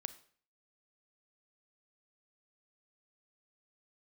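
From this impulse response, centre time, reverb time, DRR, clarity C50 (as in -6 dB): 4 ms, 0.50 s, 12.5 dB, 15.0 dB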